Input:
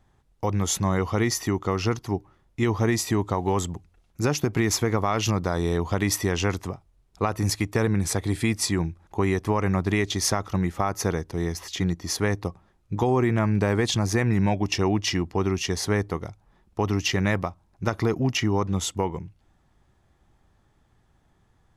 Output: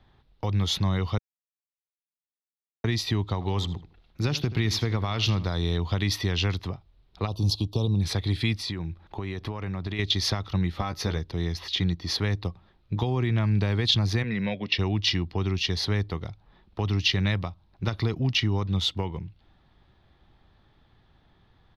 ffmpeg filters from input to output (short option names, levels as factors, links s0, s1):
-filter_complex "[0:a]asplit=3[s0][s1][s2];[s0]afade=t=out:st=3.4:d=0.02[s3];[s1]asplit=2[s4][s5];[s5]adelay=80,lowpass=f=4000:p=1,volume=0.178,asplit=2[s6][s7];[s7]adelay=80,lowpass=f=4000:p=1,volume=0.23[s8];[s4][s6][s8]amix=inputs=3:normalize=0,afade=t=in:st=3.4:d=0.02,afade=t=out:st=5.49:d=0.02[s9];[s2]afade=t=in:st=5.49:d=0.02[s10];[s3][s9][s10]amix=inputs=3:normalize=0,asplit=3[s11][s12][s13];[s11]afade=t=out:st=7.26:d=0.02[s14];[s12]asuperstop=centerf=1800:order=8:qfactor=0.95,afade=t=in:st=7.26:d=0.02,afade=t=out:st=8:d=0.02[s15];[s13]afade=t=in:st=8:d=0.02[s16];[s14][s15][s16]amix=inputs=3:normalize=0,asettb=1/sr,asplit=3[s17][s18][s19];[s17]atrim=end=8.544[s20];[s18]atrim=start=8.54:end=9.99,asetpts=PTS-STARTPTS,afade=t=in:d=0.004:c=qsin,afade=t=out:st=1.446:d=0.004:c=qsin,acompressor=threshold=0.0398:ratio=6:attack=3.2:release=140:knee=1:detection=peak[s21];[s19]atrim=start=9.986[s22];[s20][s21]acrossfade=d=0.004:c1=hsin:c2=qsin[s23];[s23][s22]acrossfade=d=0.004:c1=qsin:c2=hsin,asettb=1/sr,asplit=3[s24][s25][s26];[s24]atrim=end=10.714[s27];[s25]atrim=start=10.71:end=11.18,asetpts=PTS-STARTPTS,afade=t=in:d=0.004:c=qsin,afade=t=out:st=0.466:d=0.004:c=qsin,asplit=2[s28][s29];[s29]adelay=14,volume=0.501[s30];[s28][s30]amix=inputs=2:normalize=0,atrim=end_sample=20727[s31];[s26]atrim=start=11.176[s32];[s27][s31]acrossfade=d=0.004:c1=hsin:c2=qsin[s33];[s33][s32]acrossfade=d=0.004:c1=qsin:c2=hsin,asplit=3[s34][s35][s36];[s34]afade=t=out:st=14.22:d=0.02[s37];[s35]highpass=220,equalizer=f=220:t=q:w=4:g=4,equalizer=f=320:t=q:w=4:g=-8,equalizer=f=510:t=q:w=4:g=9,equalizer=f=830:t=q:w=4:g=-8,equalizer=f=2000:t=q:w=4:g=7,lowpass=f=4600:w=0.5412,lowpass=f=4600:w=1.3066,afade=t=in:st=14.22:d=0.02,afade=t=out:st=14.77:d=0.02[s38];[s36]afade=t=in:st=14.77:d=0.02[s39];[s37][s38][s39]amix=inputs=3:normalize=0,asplit=3[s40][s41][s42];[s40]atrim=end=1.18,asetpts=PTS-STARTPTS,afade=t=out:st=1.176:d=0.004:c=hsin[s43];[s41]atrim=start=1.18:end=2.84,asetpts=PTS-STARTPTS,volume=0[s44];[s42]atrim=start=2.84,asetpts=PTS-STARTPTS,afade=t=in:d=0.004:c=hsin[s45];[s43][s44][s45]concat=n=3:v=0:a=1,highshelf=f=5500:t=q:w=3:g=-12.5,acrossover=split=160|3000[s46][s47][s48];[s47]acompressor=threshold=0.00891:ratio=2[s49];[s46][s49][s48]amix=inputs=3:normalize=0,volume=1.33"